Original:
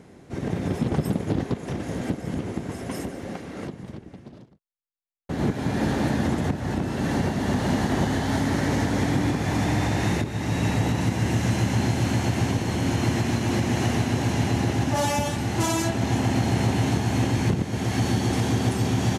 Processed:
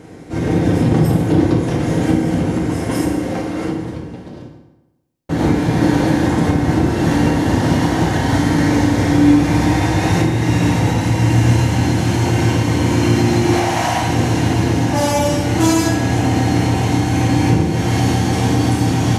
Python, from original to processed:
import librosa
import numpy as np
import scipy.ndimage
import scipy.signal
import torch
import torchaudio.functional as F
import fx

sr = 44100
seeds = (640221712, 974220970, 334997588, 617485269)

y = fx.low_shelf_res(x, sr, hz=530.0, db=-9.0, q=3.0, at=(13.53, 14.02))
y = fx.rider(y, sr, range_db=3, speed_s=0.5)
y = fx.rev_fdn(y, sr, rt60_s=1.0, lf_ratio=1.0, hf_ratio=0.75, size_ms=19.0, drr_db=-2.5)
y = y * librosa.db_to_amplitude(4.0)